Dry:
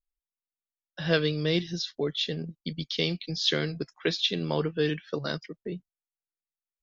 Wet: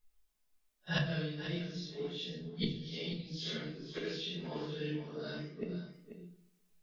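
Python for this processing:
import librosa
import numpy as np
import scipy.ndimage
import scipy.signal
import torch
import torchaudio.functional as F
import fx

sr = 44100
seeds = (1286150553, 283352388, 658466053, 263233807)

p1 = fx.phase_scramble(x, sr, seeds[0], window_ms=200)
p2 = fx.rider(p1, sr, range_db=4, speed_s=2.0)
p3 = p1 + (p2 * 10.0 ** (2.0 / 20.0))
p4 = fx.gate_flip(p3, sr, shuts_db=-24.0, range_db=-27)
p5 = p4 + 10.0 ** (-11.0 / 20.0) * np.pad(p4, (int(487 * sr / 1000.0), 0))[:len(p4)]
p6 = fx.room_shoebox(p5, sr, seeds[1], volume_m3=250.0, walls='furnished', distance_m=1.4)
p7 = fx.echo_warbled(p6, sr, ms=121, feedback_pct=59, rate_hz=2.8, cents=78, wet_db=-22.5)
y = p7 * 10.0 ** (4.5 / 20.0)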